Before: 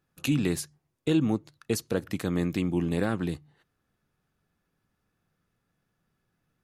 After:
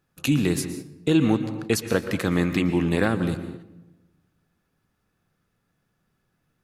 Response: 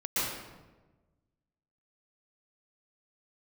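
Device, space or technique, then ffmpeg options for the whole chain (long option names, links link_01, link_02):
keyed gated reverb: -filter_complex "[0:a]asplit=3[link_01][link_02][link_03];[1:a]atrim=start_sample=2205[link_04];[link_02][link_04]afir=irnorm=-1:irlink=0[link_05];[link_03]apad=whole_len=292472[link_06];[link_05][link_06]sidechaingate=range=-6dB:threshold=-57dB:ratio=16:detection=peak,volume=-17.5dB[link_07];[link_01][link_07]amix=inputs=2:normalize=0,asettb=1/sr,asplit=3[link_08][link_09][link_10];[link_08]atrim=end=1.154[link_11];[link_09]atrim=start=1.15:end=3.08,asetpts=PTS-STARTPTS,afade=type=in:duration=0.004:curve=qsin,afade=type=out:start_time=1.926:duration=0.004:curve=qsin,equalizer=frequency=1800:width_type=o:width=2.1:gain=6[link_12];[link_10]atrim=start=3.076[link_13];[link_11][link_12]acrossfade=duration=0.004:curve1=hsin:curve2=qsin[link_14];[link_14][link_13]acrossfade=duration=0.004:curve1=qsin:curve2=hsin,volume=3.5dB"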